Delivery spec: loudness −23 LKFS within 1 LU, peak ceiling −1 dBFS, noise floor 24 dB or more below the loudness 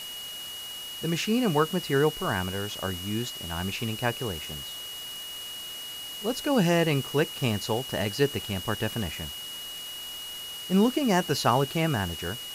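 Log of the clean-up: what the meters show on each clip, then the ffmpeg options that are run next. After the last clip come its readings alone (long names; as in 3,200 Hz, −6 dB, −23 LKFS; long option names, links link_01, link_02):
interfering tone 2,900 Hz; level of the tone −37 dBFS; background noise floor −39 dBFS; target noise floor −53 dBFS; integrated loudness −28.5 LKFS; sample peak −9.0 dBFS; target loudness −23.0 LKFS
→ -af "bandreject=frequency=2900:width=30"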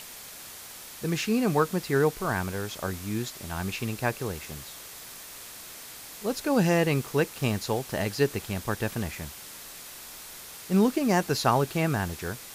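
interfering tone none found; background noise floor −44 dBFS; target noise floor −52 dBFS
→ -af "afftdn=noise_reduction=8:noise_floor=-44"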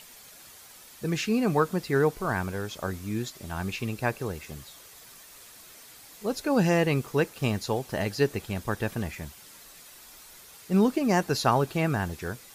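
background noise floor −50 dBFS; target noise floor −52 dBFS
→ -af "afftdn=noise_reduction=6:noise_floor=-50"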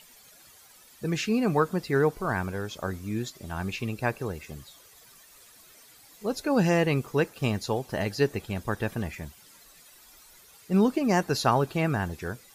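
background noise floor −55 dBFS; integrated loudness −28.0 LKFS; sample peak −9.5 dBFS; target loudness −23.0 LKFS
→ -af "volume=5dB"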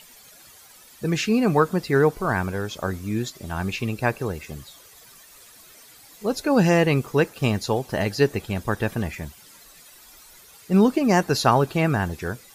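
integrated loudness −23.0 LKFS; sample peak −4.5 dBFS; background noise floor −50 dBFS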